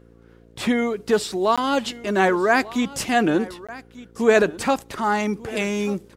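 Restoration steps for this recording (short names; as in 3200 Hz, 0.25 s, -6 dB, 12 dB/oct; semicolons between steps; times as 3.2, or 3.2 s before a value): de-hum 57.4 Hz, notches 9; interpolate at 1.56/3.67, 16 ms; inverse comb 1.192 s -18.5 dB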